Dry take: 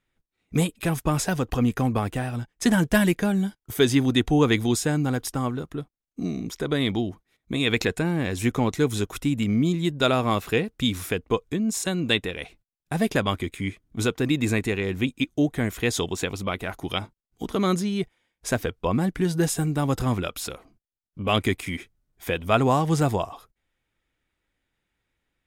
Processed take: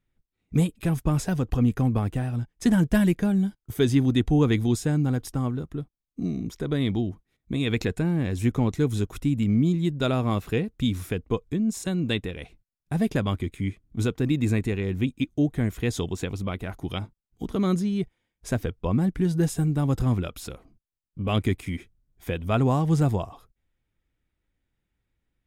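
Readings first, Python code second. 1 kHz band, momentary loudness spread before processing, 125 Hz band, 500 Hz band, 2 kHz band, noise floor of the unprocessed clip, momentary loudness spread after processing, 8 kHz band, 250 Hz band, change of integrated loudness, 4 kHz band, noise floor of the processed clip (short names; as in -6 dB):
-6.0 dB, 11 LU, +2.5 dB, -3.5 dB, -7.0 dB, -85 dBFS, 11 LU, -7.5 dB, 0.0 dB, -1.0 dB, -7.5 dB, -84 dBFS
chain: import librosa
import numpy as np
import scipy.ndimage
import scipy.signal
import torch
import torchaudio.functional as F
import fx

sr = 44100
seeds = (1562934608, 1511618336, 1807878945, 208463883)

y = fx.low_shelf(x, sr, hz=310.0, db=12.0)
y = F.gain(torch.from_numpy(y), -7.5).numpy()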